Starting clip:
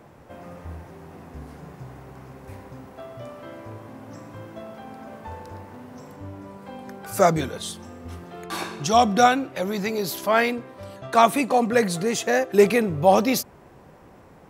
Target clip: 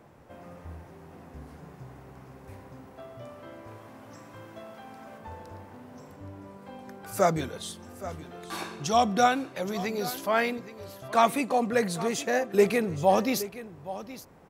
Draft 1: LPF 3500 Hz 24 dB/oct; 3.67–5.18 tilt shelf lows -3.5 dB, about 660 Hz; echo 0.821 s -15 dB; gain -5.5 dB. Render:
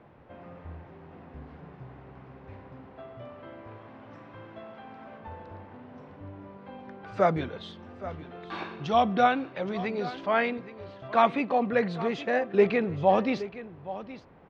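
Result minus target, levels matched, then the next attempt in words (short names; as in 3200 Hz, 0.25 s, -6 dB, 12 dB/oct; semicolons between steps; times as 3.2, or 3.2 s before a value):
4000 Hz band -4.0 dB
3.67–5.18 tilt shelf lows -3.5 dB, about 660 Hz; echo 0.821 s -15 dB; gain -5.5 dB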